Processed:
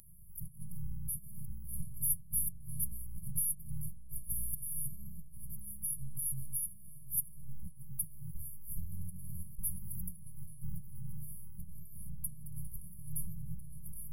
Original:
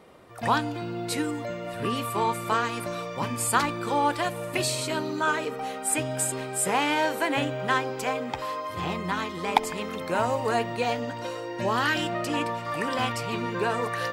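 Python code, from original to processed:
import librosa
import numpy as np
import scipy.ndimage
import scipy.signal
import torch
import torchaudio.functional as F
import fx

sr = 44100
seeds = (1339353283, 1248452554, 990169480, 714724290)

p1 = fx.hum_notches(x, sr, base_hz=60, count=3)
p2 = fx.over_compress(p1, sr, threshold_db=-33.0, ratio=-1.0)
p3 = fx.robotise(p2, sr, hz=268.0)
p4 = fx.brickwall_bandstop(p3, sr, low_hz=180.0, high_hz=10000.0)
p5 = p4 + fx.echo_filtered(p4, sr, ms=1048, feedback_pct=60, hz=890.0, wet_db=-11, dry=0)
y = p5 * librosa.db_to_amplitude(12.5)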